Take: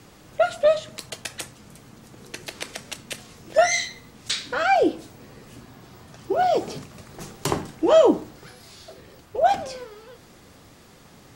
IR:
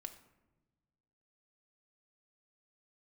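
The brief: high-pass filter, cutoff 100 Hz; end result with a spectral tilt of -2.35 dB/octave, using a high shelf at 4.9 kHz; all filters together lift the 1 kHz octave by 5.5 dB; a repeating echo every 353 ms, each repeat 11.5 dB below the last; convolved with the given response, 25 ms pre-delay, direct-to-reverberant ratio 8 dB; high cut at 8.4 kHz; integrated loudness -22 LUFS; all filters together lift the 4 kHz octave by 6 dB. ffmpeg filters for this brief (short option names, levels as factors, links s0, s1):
-filter_complex "[0:a]highpass=100,lowpass=8400,equalizer=f=1000:t=o:g=8.5,equalizer=f=4000:t=o:g=4,highshelf=f=4900:g=6.5,aecho=1:1:353|706|1059:0.266|0.0718|0.0194,asplit=2[s0][s1];[1:a]atrim=start_sample=2205,adelay=25[s2];[s1][s2]afir=irnorm=-1:irlink=0,volume=0.668[s3];[s0][s3]amix=inputs=2:normalize=0,volume=0.668"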